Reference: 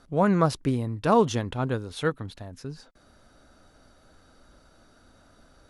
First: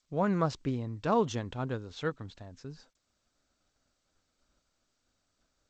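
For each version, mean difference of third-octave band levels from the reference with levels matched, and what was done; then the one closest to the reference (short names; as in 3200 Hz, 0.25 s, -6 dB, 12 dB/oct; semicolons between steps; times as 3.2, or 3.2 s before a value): 1.0 dB: expander -45 dBFS; gain -7 dB; G.722 64 kbps 16000 Hz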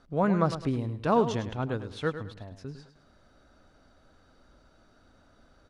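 3.5 dB: air absorption 70 m; feedback echo 0.104 s, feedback 32%, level -11 dB; gain -3.5 dB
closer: first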